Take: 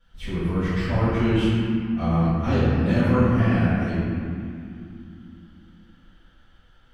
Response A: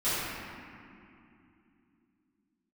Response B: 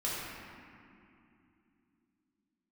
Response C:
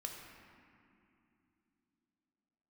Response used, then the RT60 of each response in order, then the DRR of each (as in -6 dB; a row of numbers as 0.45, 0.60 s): A; 2.8, 2.8, 2.9 s; -16.0, -8.0, 1.0 dB